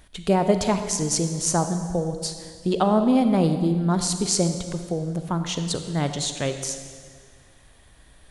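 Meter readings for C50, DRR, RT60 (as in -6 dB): 8.0 dB, 7.5 dB, 1.9 s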